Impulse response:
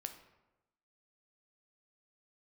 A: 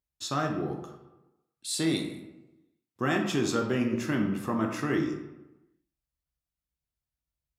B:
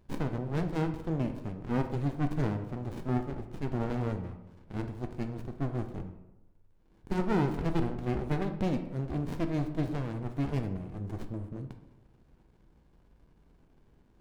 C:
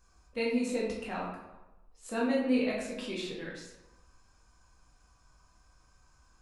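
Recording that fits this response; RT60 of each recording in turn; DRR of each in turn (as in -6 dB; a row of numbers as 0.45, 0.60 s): B; 1.0, 1.0, 1.0 s; 1.5, 6.5, -5.0 dB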